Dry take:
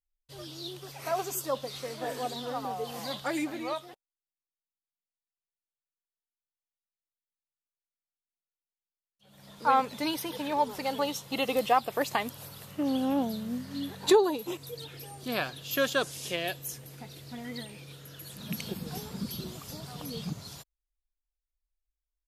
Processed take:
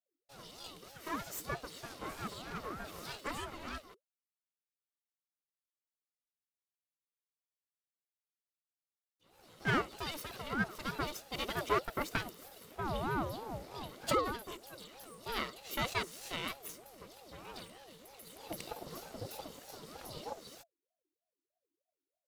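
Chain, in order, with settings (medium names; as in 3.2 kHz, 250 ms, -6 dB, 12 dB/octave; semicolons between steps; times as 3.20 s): comb filter that takes the minimum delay 1.2 ms; ring modulator with a swept carrier 500 Hz, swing 40%, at 3.2 Hz; trim -4 dB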